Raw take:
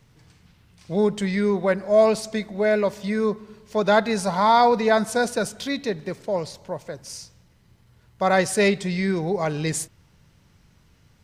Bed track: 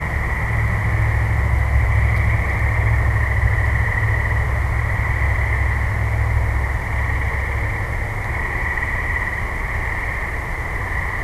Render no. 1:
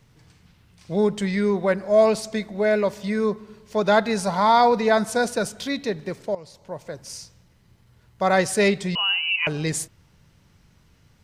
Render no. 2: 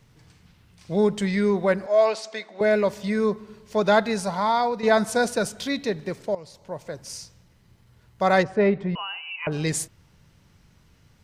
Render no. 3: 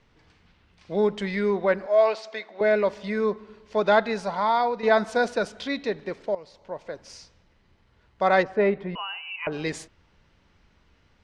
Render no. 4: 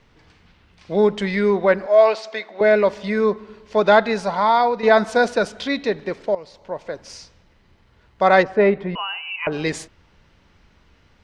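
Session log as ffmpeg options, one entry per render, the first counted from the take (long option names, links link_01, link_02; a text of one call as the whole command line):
ffmpeg -i in.wav -filter_complex "[0:a]asettb=1/sr,asplit=3[link_01][link_02][link_03];[link_01]atrim=end=8.954[link_04];[link_02]atrim=start=8.95:end=9.47,asetpts=PTS-STARTPTS,afade=type=in:duration=0.004:curve=qsin,afade=type=out:start_time=0.516:duration=0.004:curve=qsin,lowpass=frequency=2600:width_type=q:width=0.5098,lowpass=frequency=2600:width_type=q:width=0.6013,lowpass=frequency=2600:width_type=q:width=0.9,lowpass=frequency=2600:width_type=q:width=2.563,afreqshift=-3100[link_05];[link_03]atrim=start=9.466[link_06];[link_04][link_05]acrossfade=duration=0.004:curve1=hsin:curve2=qsin[link_07];[link_07][link_06]acrossfade=duration=0.004:curve1=qsin:curve2=hsin,asplit=2[link_08][link_09];[link_08]atrim=end=6.35,asetpts=PTS-STARTPTS,afade=type=out:start_time=6.346:duration=0.004:curve=hsin:silence=0.133352[link_10];[link_09]atrim=start=6.35,asetpts=PTS-STARTPTS,afade=type=in:duration=0.58:silence=0.133352[link_11];[link_10][link_11]concat=n=2:v=0:a=1" out.wav
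ffmpeg -i in.wav -filter_complex "[0:a]asettb=1/sr,asplit=3[link_01][link_02][link_03];[link_01]atrim=end=1.864[link_04];[link_02]atrim=start=1.86:end=2.61,asetpts=PTS-STARTPTS,afade=type=in:duration=0.004:curve=qsin,afade=type=out:start_time=0.746:duration=0.004:curve=qsin,highpass=570,lowpass=5700[link_05];[link_03]atrim=start=2.606[link_06];[link_04][link_05]acrossfade=duration=0.004:curve1=hsin:curve2=qsin[link_07];[link_07][link_06]acrossfade=duration=0.004:curve1=qsin:curve2=hsin,asplit=3[link_08][link_09][link_10];[link_08]afade=type=out:start_time=8.42:duration=0.02[link_11];[link_09]lowpass=1400,afade=type=in:start_time=8.42:duration=0.02,afade=type=out:start_time=9.51:duration=0.02[link_12];[link_10]afade=type=in:start_time=9.51:duration=0.02[link_13];[link_11][link_12][link_13]amix=inputs=3:normalize=0,asplit=2[link_14][link_15];[link_14]atrim=end=4.83,asetpts=PTS-STARTPTS,afade=type=out:start_time=3.84:duration=0.99:silence=0.334965[link_16];[link_15]atrim=start=4.83,asetpts=PTS-STARTPTS,afade=type=in:duration=0.004:curve=hsin:silence=0.334965[link_17];[link_16][link_17]concat=n=2:v=0:a=1" out.wav
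ffmpeg -i in.wav -af "lowpass=3800,equalizer=frequency=130:width_type=o:width=1.1:gain=-12.5" out.wav
ffmpeg -i in.wav -af "volume=6dB,alimiter=limit=-2dB:level=0:latency=1" out.wav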